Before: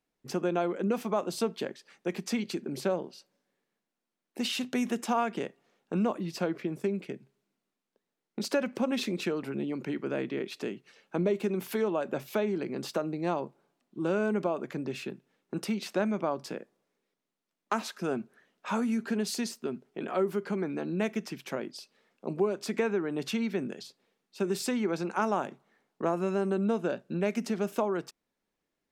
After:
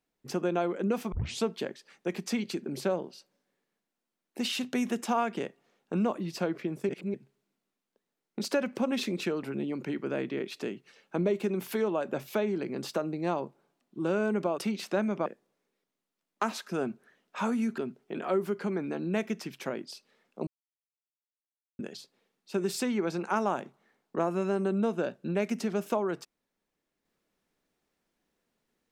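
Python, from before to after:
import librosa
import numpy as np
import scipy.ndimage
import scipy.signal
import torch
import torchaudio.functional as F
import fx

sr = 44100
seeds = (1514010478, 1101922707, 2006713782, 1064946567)

y = fx.edit(x, sr, fx.tape_start(start_s=1.12, length_s=0.31),
    fx.reverse_span(start_s=6.89, length_s=0.25),
    fx.cut(start_s=14.58, length_s=1.03),
    fx.cut(start_s=16.29, length_s=0.27),
    fx.cut(start_s=19.08, length_s=0.56),
    fx.silence(start_s=22.33, length_s=1.32), tone=tone)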